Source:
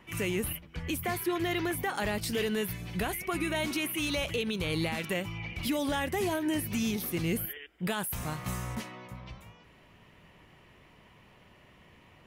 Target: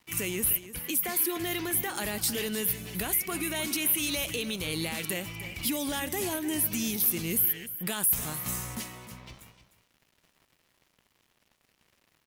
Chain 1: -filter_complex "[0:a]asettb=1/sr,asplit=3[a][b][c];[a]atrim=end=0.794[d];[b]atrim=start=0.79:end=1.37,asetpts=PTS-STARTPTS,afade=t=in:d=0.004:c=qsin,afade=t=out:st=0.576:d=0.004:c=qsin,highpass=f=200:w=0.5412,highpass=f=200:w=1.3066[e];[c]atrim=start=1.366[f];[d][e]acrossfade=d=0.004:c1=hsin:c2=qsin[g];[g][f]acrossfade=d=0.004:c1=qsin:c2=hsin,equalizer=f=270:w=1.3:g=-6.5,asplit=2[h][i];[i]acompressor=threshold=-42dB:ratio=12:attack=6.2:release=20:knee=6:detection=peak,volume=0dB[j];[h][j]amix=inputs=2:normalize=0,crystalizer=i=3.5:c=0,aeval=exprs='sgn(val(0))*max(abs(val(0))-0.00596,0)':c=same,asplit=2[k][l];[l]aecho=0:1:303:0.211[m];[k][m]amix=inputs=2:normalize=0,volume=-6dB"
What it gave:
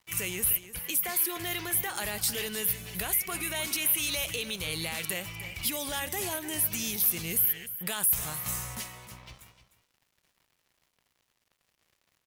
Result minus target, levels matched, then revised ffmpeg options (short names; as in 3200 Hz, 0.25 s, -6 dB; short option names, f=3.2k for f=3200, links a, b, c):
250 Hz band -7.0 dB
-filter_complex "[0:a]asettb=1/sr,asplit=3[a][b][c];[a]atrim=end=0.794[d];[b]atrim=start=0.79:end=1.37,asetpts=PTS-STARTPTS,afade=t=in:d=0.004:c=qsin,afade=t=out:st=0.576:d=0.004:c=qsin,highpass=f=200:w=0.5412,highpass=f=200:w=1.3066[e];[c]atrim=start=1.366[f];[d][e]acrossfade=d=0.004:c1=hsin:c2=qsin[g];[g][f]acrossfade=d=0.004:c1=qsin:c2=hsin,equalizer=f=270:w=1.3:g=4,asplit=2[h][i];[i]acompressor=threshold=-42dB:ratio=12:attack=6.2:release=20:knee=6:detection=peak,volume=0dB[j];[h][j]amix=inputs=2:normalize=0,crystalizer=i=3.5:c=0,aeval=exprs='sgn(val(0))*max(abs(val(0))-0.00596,0)':c=same,asplit=2[k][l];[l]aecho=0:1:303:0.211[m];[k][m]amix=inputs=2:normalize=0,volume=-6dB"